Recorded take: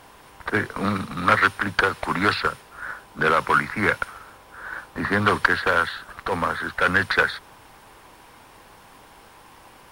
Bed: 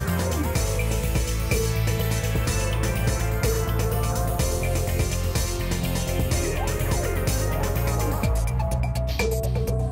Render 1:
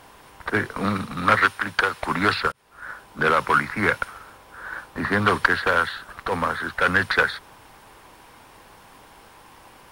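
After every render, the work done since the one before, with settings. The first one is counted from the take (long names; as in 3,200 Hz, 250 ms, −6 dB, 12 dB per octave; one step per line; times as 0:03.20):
0:01.46–0:02.02: low-shelf EQ 480 Hz −7 dB
0:02.52–0:03.24: fade in equal-power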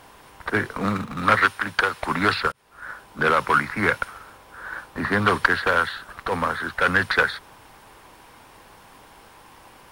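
0:00.77–0:01.23: running median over 9 samples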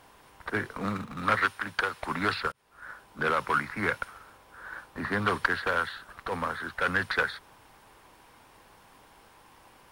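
level −7.5 dB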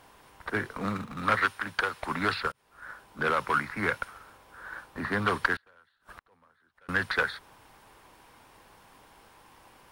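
0:05.56–0:06.89: gate with flip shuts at −31 dBFS, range −32 dB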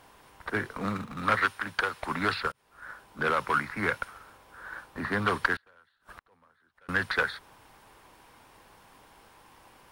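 no processing that can be heard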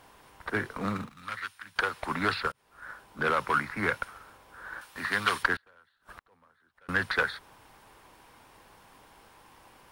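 0:01.09–0:01.76: guitar amp tone stack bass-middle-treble 5-5-5
0:04.81–0:05.43: tilt shelving filter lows −9 dB, about 1,200 Hz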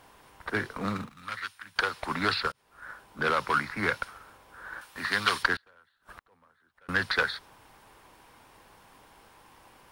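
dynamic equaliser 4,600 Hz, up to +7 dB, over −49 dBFS, Q 1.4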